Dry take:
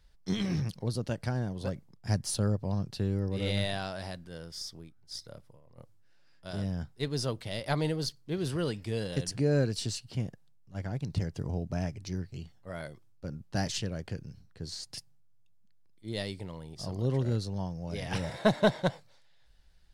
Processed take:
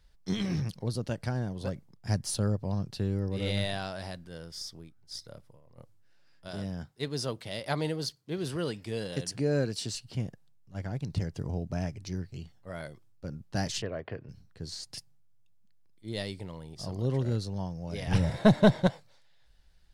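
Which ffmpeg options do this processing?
-filter_complex "[0:a]asettb=1/sr,asplit=3[a][b][c];[a]atrim=end=6.484[d];[b]atrim=start=6.48:end=9.95,asetpts=PTS-STARTPTS,afade=t=in:d=0.004:c=qsin,afade=t=out:st=3.466:d=0.004:c=qsin,highpass=f=140:p=1[e];[c]atrim=start=9.946[f];[d][e]acrossfade=d=0.004:c1=hsin:c2=qsin[g];[g][f]acrossfade=d=0.004:c1=qsin:c2=hsin,asettb=1/sr,asplit=3[h][i][j];[h]atrim=end=13.824[k];[i]atrim=start=13.82:end=14.29,asetpts=PTS-STARTPTS,afade=t=in:d=0.004:c=qsin,afade=t=out:st=0.466:d=0.004:c=qsin,highpass=110,equalizer=f=180:t=q:w=4:g=-9,equalizer=f=430:t=q:w=4:g=5,equalizer=f=650:t=q:w=4:g=8,equalizer=f=1.1k:t=q:w=4:g=8,equalizer=f=1.9k:t=q:w=4:g=5,lowpass=f=3.3k:w=0.5412,lowpass=f=3.3k:w=1.3066[l];[j]atrim=start=14.286[m];[k][l]acrossfade=d=0.004:c1=hsin:c2=qsin[n];[n][m]acrossfade=d=0.004:c1=qsin:c2=hsin,asettb=1/sr,asplit=3[o][p][q];[o]atrim=end=18.074[r];[p]atrim=start=18.07:end=18.87,asetpts=PTS-STARTPTS,afade=t=in:d=0.004:c=qsin,afade=t=out:st=0.796:d=0.004:c=qsin,lowshelf=f=240:g=12[s];[q]atrim=start=18.866[t];[r][s]acrossfade=d=0.004:c1=hsin:c2=qsin[u];[u][t]acrossfade=d=0.004:c1=qsin:c2=hsin"

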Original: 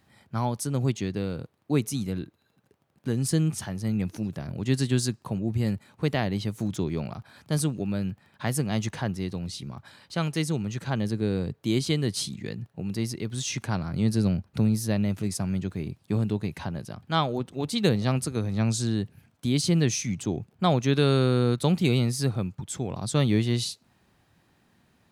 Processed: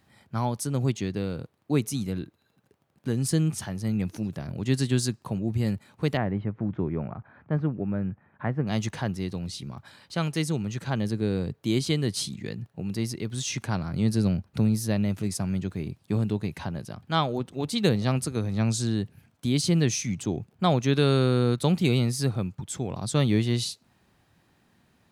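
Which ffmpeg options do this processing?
-filter_complex "[0:a]asettb=1/sr,asplit=3[a][b][c];[a]atrim=end=6.174[d];[b]atrim=start=6.17:end=8.67,asetpts=PTS-STARTPTS,afade=t=in:d=0.004:c=qsin,afade=t=out:st=2.496:d=0.004:c=qsin,lowpass=f=1.9k:w=0.5412,lowpass=f=1.9k:w=1.3066[e];[c]atrim=start=8.666[f];[d][e]acrossfade=d=0.004:c1=hsin:c2=qsin[g];[g][f]acrossfade=d=0.004:c1=qsin:c2=hsin"

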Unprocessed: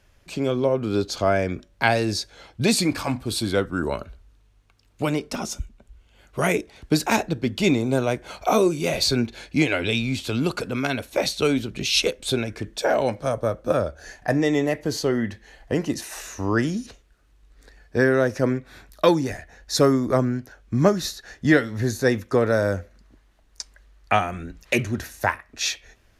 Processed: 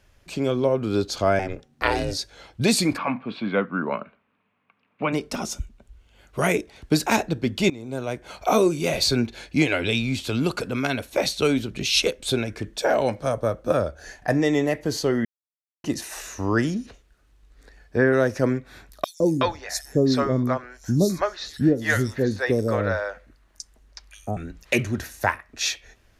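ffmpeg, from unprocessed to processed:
-filter_complex "[0:a]asettb=1/sr,asplit=3[a][b][c];[a]atrim=end=1.394[d];[b]atrim=start=1.39:end=2.19,asetpts=PTS-STARTPTS,afade=t=in:d=0.004:c=qsin,afade=t=out:st=0.796:d=0.004:c=qsin,aeval=exprs='val(0)*sin(2*PI*190*n/s)':c=same[e];[c]atrim=start=2.186[f];[d][e]acrossfade=d=0.004:c1=hsin:c2=qsin[g];[g][f]acrossfade=d=0.004:c1=qsin:c2=hsin,asplit=3[h][i][j];[h]afade=t=out:st=2.96:d=0.02[k];[i]highpass=f=170:w=0.5412,highpass=f=170:w=1.3066,equalizer=f=200:t=q:w=4:g=5,equalizer=f=350:t=q:w=4:g=-8,equalizer=f=1.1k:t=q:w=4:g=6,equalizer=f=2.4k:t=q:w=4:g=6,lowpass=f=2.7k:w=0.5412,lowpass=f=2.7k:w=1.3066,afade=t=in:st=2.96:d=0.02,afade=t=out:st=5.12:d=0.02[l];[j]afade=t=in:st=5.12:d=0.02[m];[k][l][m]amix=inputs=3:normalize=0,asettb=1/sr,asplit=3[n][o][p];[n]atrim=end=16.744[q];[o]atrim=start=16.74:end=18.13,asetpts=PTS-STARTPTS,afade=t=in:d=0.004:c=qsin,afade=t=out:st=1.386:d=0.004:c=qsin,acrossover=split=2900[r][s];[s]acompressor=threshold=-54dB:ratio=4:attack=1:release=60[t];[r][t]amix=inputs=2:normalize=0[u];[p]atrim=start=18.126[v];[q][u]acrossfade=d=0.004:c1=hsin:c2=qsin[w];[w][v]acrossfade=d=0.004:c1=qsin:c2=hsin,asettb=1/sr,asplit=3[x][y][z];[x]atrim=end=19.044[aa];[y]atrim=start=19.04:end=24.37,asetpts=PTS-STARTPTS,afade=t=in:d=0.004:c=qsin,afade=t=out:st=5.326:d=0.004:c=qsin,acrossover=split=560|4800[ab][ac][ad];[ab]adelay=160[ae];[ac]adelay=370[af];[ae][af][ad]amix=inputs=3:normalize=0,atrim=end_sample=235053[ag];[z]atrim=start=24.366[ah];[aa][ag]acrossfade=d=0.004:c1=hsin:c2=qsin[ai];[ai][ah]acrossfade=d=0.004:c1=qsin:c2=hsin,asplit=4[aj][ak][al][am];[aj]atrim=end=7.7,asetpts=PTS-STARTPTS,afade=t=out:st=7.696:d=0.004:c=hsin:silence=0.0944061[an];[ak]atrim=start=7.7:end=15.25,asetpts=PTS-STARTPTS,afade=t=in:d=0.83:silence=0.0944061,afade=t=out:st=7.546:d=0.004:c=hsin[ao];[al]atrim=start=15.25:end=15.84,asetpts=PTS-STARTPTS,volume=0[ap];[am]atrim=start=15.84,asetpts=PTS-STARTPTS,afade=t=in:d=0.004:c=hsin[aq];[an][ao][ap][aq]concat=n=4:v=0:a=1"

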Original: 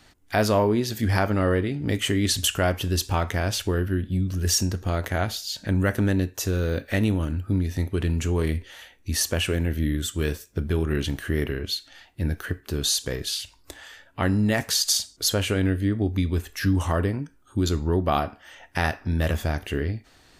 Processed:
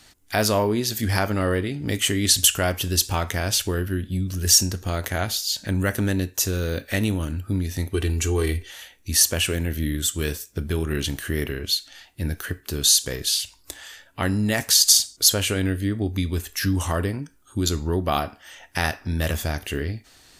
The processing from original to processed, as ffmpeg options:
-filter_complex "[0:a]asettb=1/sr,asplit=3[a][b][c];[a]atrim=end=7.944[d];[b]atrim=start=7.94:end=8.71,asetpts=PTS-STARTPTS,afade=t=in:d=0.004:c=qsin,afade=t=out:st=0.766:d=0.004:c=qsin,aecho=1:1:2.6:0.65,atrim=end_sample=33957[e];[c]atrim=start=8.706[f];[d][e]acrossfade=d=0.004:c1=hsin:c2=qsin[g];[g][f]acrossfade=d=0.004:c1=qsin:c2=hsin,equalizer=f=12k:t=o:w=2.6:g=10.5,volume=-1dB"

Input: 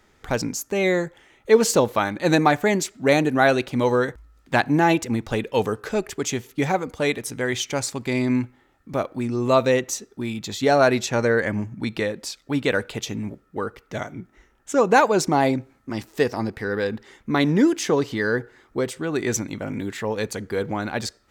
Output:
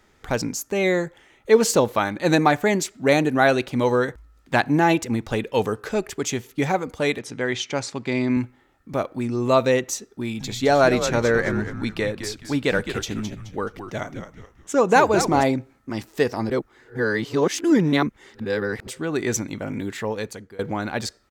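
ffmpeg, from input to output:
-filter_complex "[0:a]asettb=1/sr,asplit=3[a][b][c];[a]atrim=end=7.194[d];[b]atrim=start=7.19:end=8.37,asetpts=PTS-STARTPTS,afade=t=in:d=0.004:c=qsin,afade=t=out:st=1.176:d=0.004:c=qsin,highpass=110,lowpass=5.5k[e];[c]atrim=start=8.366[f];[d][e]acrossfade=d=0.004:c1=hsin:c2=qsin[g];[g][f]acrossfade=d=0.004:c1=qsin:c2=hsin,asplit=3[h][i][j];[h]afade=t=out:st=10.39:d=0.02[k];[i]asplit=5[l][m][n][o][p];[m]adelay=213,afreqshift=-100,volume=-9dB[q];[n]adelay=426,afreqshift=-200,volume=-18.6dB[r];[o]adelay=639,afreqshift=-300,volume=-28.3dB[s];[p]adelay=852,afreqshift=-400,volume=-37.9dB[t];[l][q][r][s][t]amix=inputs=5:normalize=0,afade=t=in:st=10.39:d=0.02,afade=t=out:st=15.42:d=0.02[u];[j]afade=t=in:st=15.42:d=0.02[v];[k][u][v]amix=inputs=3:normalize=0,asplit=4[w][x][y][z];[w]atrim=end=16.502[aa];[x]atrim=start=16.498:end=18.872,asetpts=PTS-STARTPTS,areverse[ab];[y]atrim=start=18.868:end=20.59,asetpts=PTS-STARTPTS,afade=t=out:st=1.172:d=0.55:silence=0.0707946[ac];[z]atrim=start=20.59,asetpts=PTS-STARTPTS,afade=t=in:d=0.004:c=hsin:silence=0.0707946[ad];[aa][ab]acrossfade=d=0.004:c1=hsin:c2=hsin[ae];[ac][ad]concat=n=2:v=0:a=1[af];[ae][af]acrossfade=d=0.004:c1=hsin:c2=hsin"

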